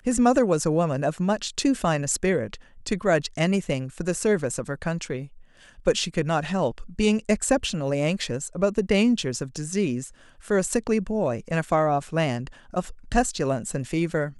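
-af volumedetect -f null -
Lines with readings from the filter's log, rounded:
mean_volume: -24.7 dB
max_volume: -6.1 dB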